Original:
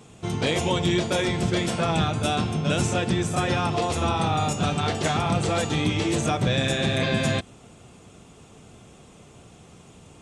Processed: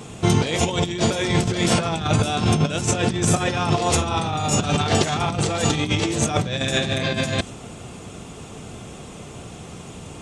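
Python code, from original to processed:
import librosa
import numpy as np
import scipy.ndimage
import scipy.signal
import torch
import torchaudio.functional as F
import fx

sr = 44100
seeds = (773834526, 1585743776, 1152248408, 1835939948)

y = fx.dynamic_eq(x, sr, hz=6200.0, q=1.0, threshold_db=-45.0, ratio=4.0, max_db=4)
y = fx.over_compress(y, sr, threshold_db=-27.0, ratio=-0.5)
y = F.gain(torch.from_numpy(y), 7.0).numpy()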